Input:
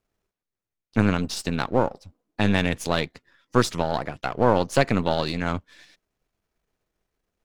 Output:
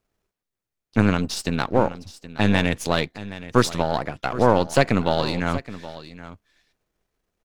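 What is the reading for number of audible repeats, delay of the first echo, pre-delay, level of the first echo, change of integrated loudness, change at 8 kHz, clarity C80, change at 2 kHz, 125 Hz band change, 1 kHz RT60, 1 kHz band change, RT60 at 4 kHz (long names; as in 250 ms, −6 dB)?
1, 772 ms, no reverb audible, −15.5 dB, +2.0 dB, +2.0 dB, no reverb audible, +2.0 dB, +2.0 dB, no reverb audible, +2.0 dB, no reverb audible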